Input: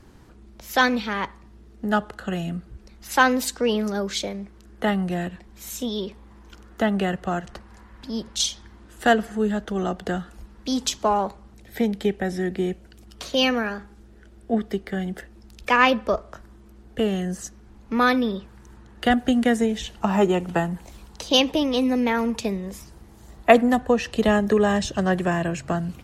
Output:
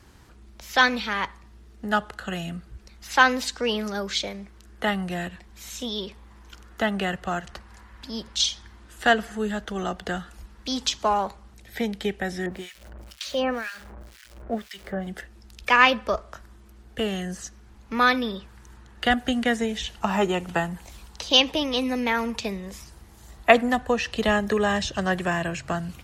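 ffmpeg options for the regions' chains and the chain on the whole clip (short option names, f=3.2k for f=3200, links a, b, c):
-filter_complex "[0:a]asettb=1/sr,asplit=3[a][b][c];[a]atrim=end=12.464[d];[b]atrim=start=12.46:end=15.07,asetpts=PTS-STARTPTS,afade=t=in:d=0.004:c=qsin,afade=t=out:st=2.606:d=0.004:c=qsin,aeval=exprs='val(0)+0.5*0.0141*sgn(val(0))':c=same,equalizer=f=580:t=o:w=0.22:g=9,acrossover=split=1600[e][f];[e]aeval=exprs='val(0)*(1-1/2+1/2*cos(2*PI*2*n/s))':c=same[g];[f]aeval=exprs='val(0)*(1-1/2-1/2*cos(2*PI*2*n/s))':c=same[h];[g][h]amix=inputs=2:normalize=0[i];[c]atrim=start=15.066[j];[d][i]acrossfade=d=0.004:c1=hsin:c2=qsin[k];[k][j]acrossfade=d=0.004:c1=qsin:c2=hsin,highpass=42,acrossover=split=6100[l][m];[m]acompressor=threshold=-50dB:ratio=4:attack=1:release=60[n];[l][n]amix=inputs=2:normalize=0,equalizer=f=270:w=0.36:g=-9,volume=3.5dB"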